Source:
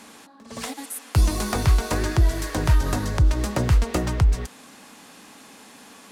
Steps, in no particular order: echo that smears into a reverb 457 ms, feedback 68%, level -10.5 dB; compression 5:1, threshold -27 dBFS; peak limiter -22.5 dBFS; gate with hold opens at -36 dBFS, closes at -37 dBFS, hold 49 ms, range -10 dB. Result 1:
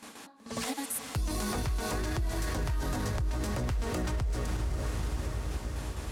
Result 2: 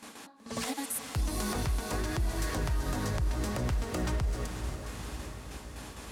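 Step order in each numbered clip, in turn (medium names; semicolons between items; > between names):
gate with hold > echo that smears into a reverb > peak limiter > compression; gate with hold > compression > echo that smears into a reverb > peak limiter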